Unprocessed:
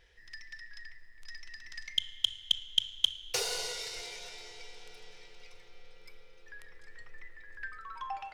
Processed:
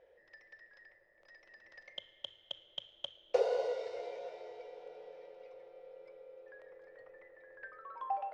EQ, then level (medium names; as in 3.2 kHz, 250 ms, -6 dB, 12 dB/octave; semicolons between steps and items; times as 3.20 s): band-pass filter 560 Hz, Q 6.9; distance through air 56 m; +17.5 dB